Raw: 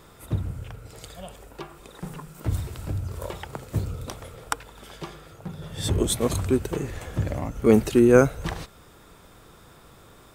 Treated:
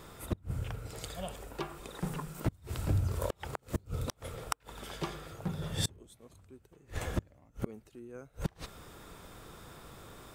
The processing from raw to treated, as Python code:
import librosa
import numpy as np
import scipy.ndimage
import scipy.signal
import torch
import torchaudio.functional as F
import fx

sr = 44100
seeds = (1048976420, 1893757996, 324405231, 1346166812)

y = fx.gate_flip(x, sr, shuts_db=-19.0, range_db=-32)